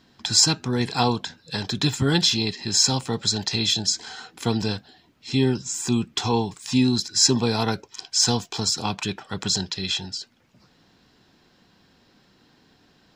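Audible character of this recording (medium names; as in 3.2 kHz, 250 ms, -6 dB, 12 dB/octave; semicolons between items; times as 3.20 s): noise floor -60 dBFS; spectral tilt -3.5 dB/octave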